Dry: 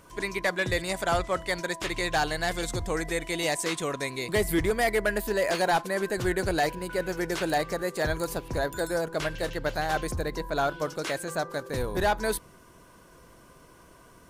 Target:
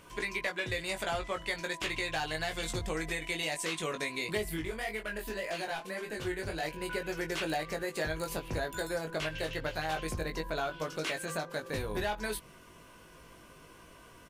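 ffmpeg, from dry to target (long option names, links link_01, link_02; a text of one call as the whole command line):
ffmpeg -i in.wav -filter_complex "[0:a]equalizer=frequency=2700:width=1.5:gain=8,acompressor=threshold=-29dB:ratio=6,asettb=1/sr,asplit=3[link_01][link_02][link_03];[link_01]atrim=end=4.494[link_04];[link_02]atrim=start=4.49:end=6.63,asetpts=PTS-STARTPTS,afade=type=in:duration=0.004:curve=qsin,afade=type=out:start_time=2.136:duration=0.004:curve=qsin,flanger=delay=17.5:depth=4.9:speed=1.9[link_05];[link_03]atrim=start=6.626[link_06];[link_04][link_05]acrossfade=duration=0.004:curve1=hsin:curve2=qsin[link_07];[link_07][link_06]acrossfade=duration=0.004:curve1=qsin:curve2=hsin,asplit=2[link_08][link_09];[link_09]adelay=19,volume=-5dB[link_10];[link_08][link_10]amix=inputs=2:normalize=0,volume=-3dB" out.wav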